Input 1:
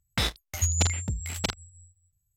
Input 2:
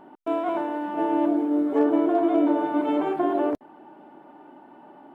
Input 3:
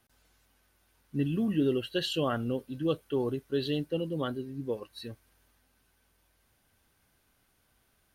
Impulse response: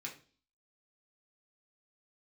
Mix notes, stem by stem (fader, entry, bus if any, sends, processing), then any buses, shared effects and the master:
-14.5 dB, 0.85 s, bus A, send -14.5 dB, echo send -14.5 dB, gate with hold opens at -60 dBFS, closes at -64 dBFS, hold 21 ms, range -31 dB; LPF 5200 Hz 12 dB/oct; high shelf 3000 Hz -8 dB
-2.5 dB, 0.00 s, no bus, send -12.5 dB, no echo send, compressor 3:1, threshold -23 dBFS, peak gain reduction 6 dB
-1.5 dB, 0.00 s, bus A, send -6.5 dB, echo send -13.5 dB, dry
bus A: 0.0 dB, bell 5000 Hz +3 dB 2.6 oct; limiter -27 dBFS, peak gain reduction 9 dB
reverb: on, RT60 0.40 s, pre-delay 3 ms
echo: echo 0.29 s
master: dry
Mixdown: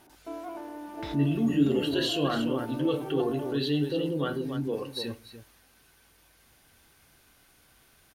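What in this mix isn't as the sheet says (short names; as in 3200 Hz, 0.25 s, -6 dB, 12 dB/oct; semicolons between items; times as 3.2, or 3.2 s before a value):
stem 2 -2.5 dB -> -12.5 dB; stem 3 -1.5 dB -> +7.0 dB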